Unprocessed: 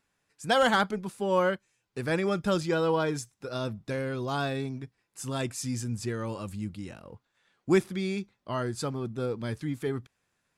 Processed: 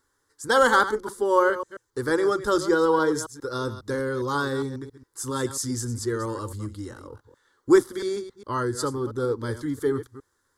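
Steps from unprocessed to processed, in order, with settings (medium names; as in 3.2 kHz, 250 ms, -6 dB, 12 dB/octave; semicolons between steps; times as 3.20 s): chunks repeated in reverse 136 ms, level -12 dB; static phaser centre 680 Hz, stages 6; trim +8 dB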